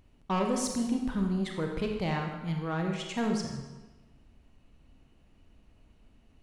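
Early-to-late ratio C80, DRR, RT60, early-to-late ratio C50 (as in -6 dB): 6.0 dB, 2.0 dB, 1.2 s, 4.0 dB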